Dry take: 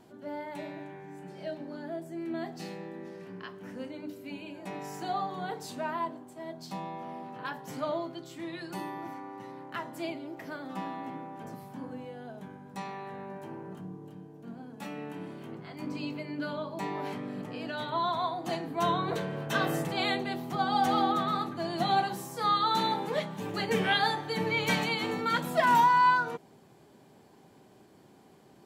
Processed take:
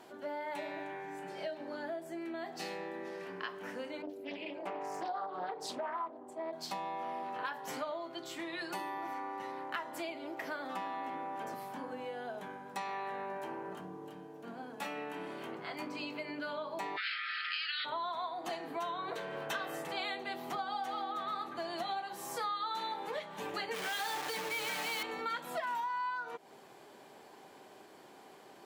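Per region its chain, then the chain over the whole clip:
4.02–6.53 s: resonances exaggerated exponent 1.5 + loudspeaker Doppler distortion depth 0.3 ms
16.96–17.84 s: spectral peaks clipped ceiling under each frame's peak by 18 dB + brick-wall FIR band-pass 1.2–5.3 kHz + peaking EQ 3.7 kHz +6.5 dB 2.5 oct
23.74–25.03 s: compression 12:1, threshold -31 dBFS + companded quantiser 2-bit
whole clip: tone controls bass -10 dB, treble -4 dB; compression 12:1, threshold -41 dBFS; bass shelf 330 Hz -10.5 dB; trim +7.5 dB

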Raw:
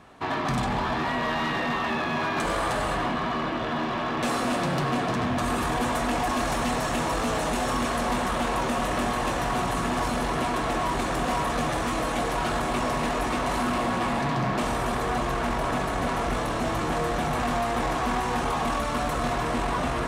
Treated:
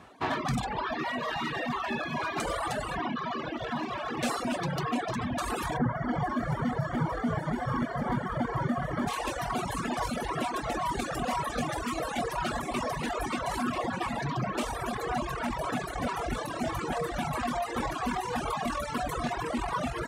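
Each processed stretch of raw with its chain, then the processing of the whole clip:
5.76–9.07 s: formants flattened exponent 0.6 + Savitzky-Golay filter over 41 samples + peaking EQ 140 Hz +13.5 dB 0.97 oct
whole clip: reverb removal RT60 1.5 s; high-pass 44 Hz; reverb removal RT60 1.6 s

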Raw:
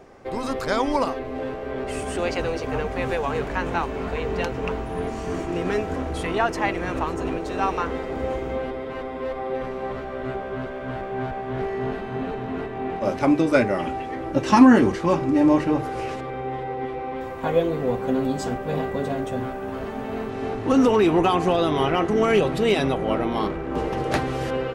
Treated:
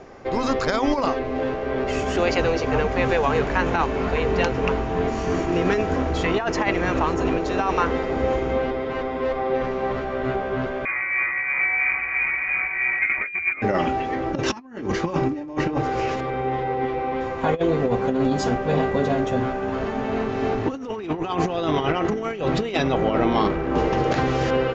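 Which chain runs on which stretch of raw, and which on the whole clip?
10.85–13.62 s: brick-wall FIR high-pass 180 Hz + frequency inversion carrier 2.7 kHz
whole clip: Chebyshev low-pass 7 kHz, order 6; compressor with a negative ratio -24 dBFS, ratio -0.5; trim +3.5 dB

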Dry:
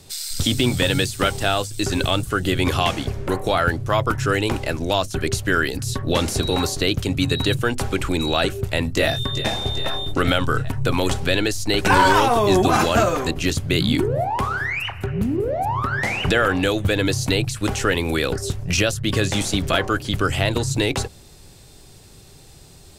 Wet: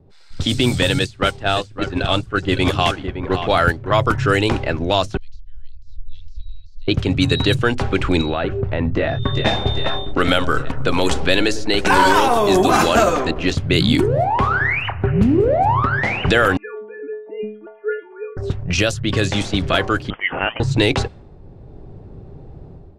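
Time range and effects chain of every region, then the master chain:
0.99–3.95 s: gate -22 dBFS, range -9 dB + delay 563 ms -9 dB
5.17–6.88 s: inverse Chebyshev band-stop 160–1200 Hz, stop band 70 dB + distance through air 170 m
8.21–9.23 s: compression 3:1, threshold -23 dBFS + distance through air 73 m
10.02–13.55 s: peaking EQ 110 Hz -12.5 dB 0.56 oct + feedback echo behind a low-pass 102 ms, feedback 58%, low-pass 1 kHz, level -12 dB
16.57–18.37 s: formants replaced by sine waves + inharmonic resonator 210 Hz, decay 0.53 s, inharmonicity 0.008
20.10–20.60 s: high-pass 670 Hz + frequency inversion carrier 3.4 kHz
whole clip: level-controlled noise filter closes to 580 Hz, open at -13.5 dBFS; level rider; trim -1 dB

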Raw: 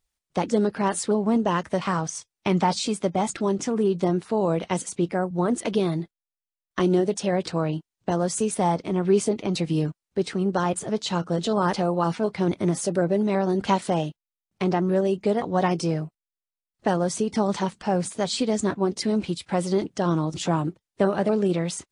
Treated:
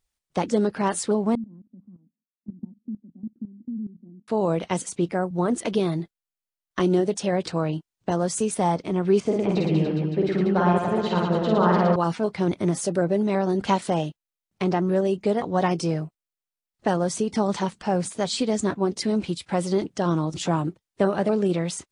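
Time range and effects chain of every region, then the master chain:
1.35–4.28 s: Butterworth band-pass 230 Hz, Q 4.4 + level held to a coarse grid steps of 15 dB
9.20–11.96 s: low-pass 2.5 kHz + reverse bouncing-ball echo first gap 50 ms, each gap 1.25×, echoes 6, each echo -2 dB
whole clip: none

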